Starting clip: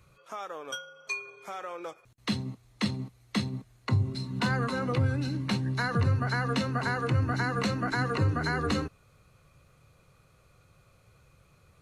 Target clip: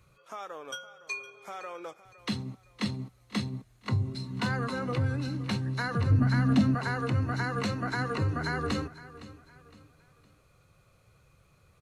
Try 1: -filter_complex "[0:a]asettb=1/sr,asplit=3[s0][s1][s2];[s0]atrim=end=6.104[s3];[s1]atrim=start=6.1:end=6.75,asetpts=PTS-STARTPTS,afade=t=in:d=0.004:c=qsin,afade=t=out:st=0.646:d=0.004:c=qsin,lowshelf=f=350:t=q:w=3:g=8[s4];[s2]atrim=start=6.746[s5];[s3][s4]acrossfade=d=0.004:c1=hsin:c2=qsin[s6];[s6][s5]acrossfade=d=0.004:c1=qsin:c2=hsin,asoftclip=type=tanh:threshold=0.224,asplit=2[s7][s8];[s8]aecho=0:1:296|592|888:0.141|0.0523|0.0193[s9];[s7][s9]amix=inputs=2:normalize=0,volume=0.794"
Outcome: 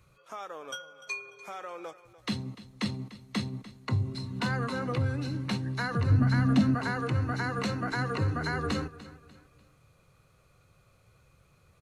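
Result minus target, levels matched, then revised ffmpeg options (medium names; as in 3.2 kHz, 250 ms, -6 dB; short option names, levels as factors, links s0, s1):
echo 216 ms early
-filter_complex "[0:a]asettb=1/sr,asplit=3[s0][s1][s2];[s0]atrim=end=6.104[s3];[s1]atrim=start=6.1:end=6.75,asetpts=PTS-STARTPTS,afade=t=in:d=0.004:c=qsin,afade=t=out:st=0.646:d=0.004:c=qsin,lowshelf=f=350:t=q:w=3:g=8[s4];[s2]atrim=start=6.746[s5];[s3][s4]acrossfade=d=0.004:c1=hsin:c2=qsin[s6];[s6][s5]acrossfade=d=0.004:c1=qsin:c2=hsin,asoftclip=type=tanh:threshold=0.224,asplit=2[s7][s8];[s8]aecho=0:1:512|1024|1536:0.141|0.0523|0.0193[s9];[s7][s9]amix=inputs=2:normalize=0,volume=0.794"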